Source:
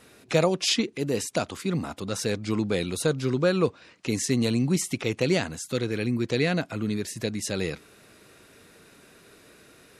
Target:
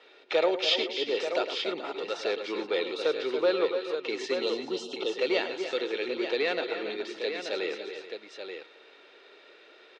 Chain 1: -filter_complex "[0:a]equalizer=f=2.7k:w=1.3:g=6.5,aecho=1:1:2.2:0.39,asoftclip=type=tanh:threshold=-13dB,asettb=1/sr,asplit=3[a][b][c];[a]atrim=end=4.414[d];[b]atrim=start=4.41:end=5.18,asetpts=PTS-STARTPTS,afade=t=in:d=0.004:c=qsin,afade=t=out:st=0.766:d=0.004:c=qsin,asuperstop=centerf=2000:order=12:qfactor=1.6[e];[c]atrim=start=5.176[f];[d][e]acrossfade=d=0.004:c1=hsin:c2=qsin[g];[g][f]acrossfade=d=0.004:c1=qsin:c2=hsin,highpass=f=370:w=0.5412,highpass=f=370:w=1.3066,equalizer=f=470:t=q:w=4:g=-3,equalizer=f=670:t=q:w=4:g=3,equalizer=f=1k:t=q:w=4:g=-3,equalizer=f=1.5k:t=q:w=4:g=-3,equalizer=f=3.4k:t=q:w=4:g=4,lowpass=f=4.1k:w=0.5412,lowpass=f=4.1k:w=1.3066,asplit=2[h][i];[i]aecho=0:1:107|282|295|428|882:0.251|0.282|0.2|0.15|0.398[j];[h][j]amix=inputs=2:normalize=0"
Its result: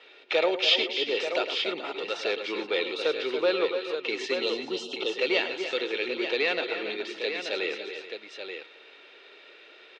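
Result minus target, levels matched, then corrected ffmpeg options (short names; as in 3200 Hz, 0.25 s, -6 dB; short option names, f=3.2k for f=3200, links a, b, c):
2000 Hz band +3.0 dB
-filter_complex "[0:a]aecho=1:1:2.2:0.39,asoftclip=type=tanh:threshold=-13dB,asettb=1/sr,asplit=3[a][b][c];[a]atrim=end=4.414[d];[b]atrim=start=4.41:end=5.18,asetpts=PTS-STARTPTS,afade=t=in:d=0.004:c=qsin,afade=t=out:st=0.766:d=0.004:c=qsin,asuperstop=centerf=2000:order=12:qfactor=1.6[e];[c]atrim=start=5.176[f];[d][e]acrossfade=d=0.004:c1=hsin:c2=qsin[g];[g][f]acrossfade=d=0.004:c1=qsin:c2=hsin,highpass=f=370:w=0.5412,highpass=f=370:w=1.3066,equalizer=f=470:t=q:w=4:g=-3,equalizer=f=670:t=q:w=4:g=3,equalizer=f=1k:t=q:w=4:g=-3,equalizer=f=1.5k:t=q:w=4:g=-3,equalizer=f=3.4k:t=q:w=4:g=4,lowpass=f=4.1k:w=0.5412,lowpass=f=4.1k:w=1.3066,asplit=2[h][i];[i]aecho=0:1:107|282|295|428|882:0.251|0.282|0.2|0.15|0.398[j];[h][j]amix=inputs=2:normalize=0"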